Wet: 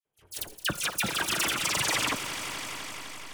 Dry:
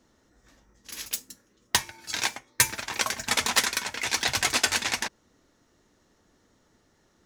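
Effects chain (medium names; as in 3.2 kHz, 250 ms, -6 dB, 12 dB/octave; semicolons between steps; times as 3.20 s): gliding tape speed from 176% -> 94%; treble shelf 2.3 kHz -4.5 dB; gate -59 dBFS, range -28 dB; in parallel at -8 dB: hysteresis with a dead band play -28 dBFS; on the sum: phase dispersion lows, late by 90 ms, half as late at 2.1 kHz; reverse; compression, threshold -32 dBFS, peak gain reduction 12.5 dB; reverse; echo with a slow build-up 137 ms, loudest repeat 5, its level -15.5 dB; granular stretch 0.62×, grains 39 ms; trim +7.5 dB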